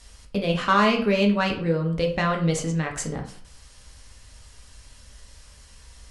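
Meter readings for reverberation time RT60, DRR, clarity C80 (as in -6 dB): 0.50 s, 1.5 dB, 13.5 dB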